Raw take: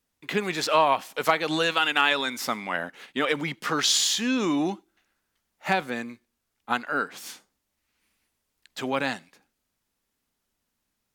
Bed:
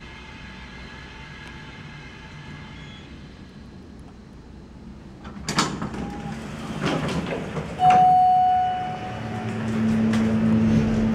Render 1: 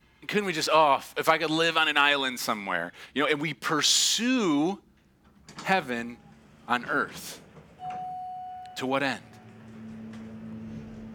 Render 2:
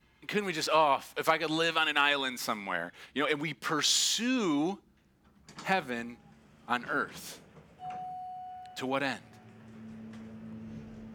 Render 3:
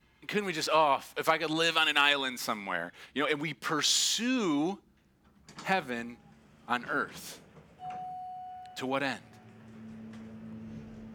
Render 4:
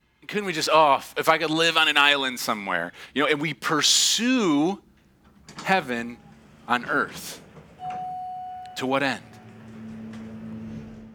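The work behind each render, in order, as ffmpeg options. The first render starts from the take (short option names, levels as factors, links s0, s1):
-filter_complex "[1:a]volume=0.0891[s0];[0:a][s0]amix=inputs=2:normalize=0"
-af "volume=0.596"
-filter_complex "[0:a]asettb=1/sr,asplit=3[s0][s1][s2];[s0]atrim=end=1.534[s3];[s1]atrim=start=1.53:end=2.13,asetpts=PTS-STARTPTS,afade=t=in:d=0.004:c=qsin,afade=t=out:st=0.596:d=0.004:c=qsin,adynamicequalizer=threshold=0.0126:dfrequency=2800:dqfactor=0.7:tfrequency=2800:tqfactor=0.7:attack=5:release=100:ratio=0.375:range=3:mode=boostabove:tftype=highshelf[s4];[s2]atrim=start=2.126[s5];[s3][s4]acrossfade=d=0.004:c1=hsin:c2=qsin[s6];[s6][s5]acrossfade=d=0.004:c1=qsin:c2=hsin"
-af "dynaudnorm=f=170:g=5:m=2.51"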